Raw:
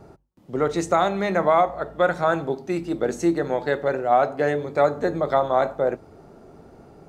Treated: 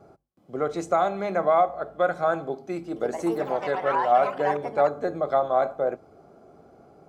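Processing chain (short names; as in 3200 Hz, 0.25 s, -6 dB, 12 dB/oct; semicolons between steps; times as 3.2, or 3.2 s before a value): bell 800 Hz +7.5 dB 1.2 oct; notch comb 920 Hz; 2.79–5.34 echoes that change speed 0.173 s, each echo +5 st, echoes 3, each echo -6 dB; gain -7 dB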